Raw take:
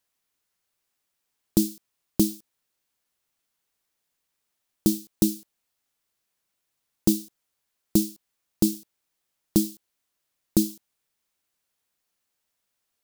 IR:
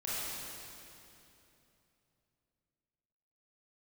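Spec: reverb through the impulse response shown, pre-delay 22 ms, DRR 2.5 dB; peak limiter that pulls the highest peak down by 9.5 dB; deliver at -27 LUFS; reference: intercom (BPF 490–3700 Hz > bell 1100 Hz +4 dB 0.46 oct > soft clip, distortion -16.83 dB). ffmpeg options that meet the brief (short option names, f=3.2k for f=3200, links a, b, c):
-filter_complex "[0:a]alimiter=limit=-15dB:level=0:latency=1,asplit=2[a][b];[1:a]atrim=start_sample=2205,adelay=22[c];[b][c]afir=irnorm=-1:irlink=0,volume=-7.5dB[d];[a][d]amix=inputs=2:normalize=0,highpass=490,lowpass=3.7k,equalizer=f=1.1k:t=o:w=0.46:g=4,asoftclip=threshold=-30.5dB,volume=17.5dB"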